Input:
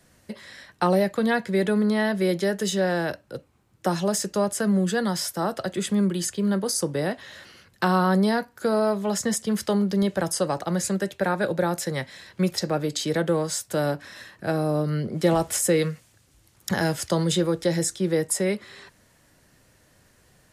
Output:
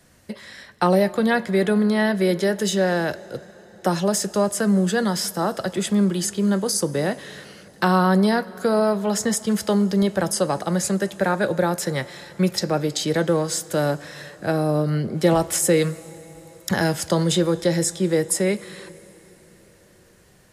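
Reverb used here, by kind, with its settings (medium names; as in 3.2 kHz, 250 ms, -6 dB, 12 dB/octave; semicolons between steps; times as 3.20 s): plate-style reverb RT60 4.8 s, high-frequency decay 0.8×, DRR 18 dB; trim +3 dB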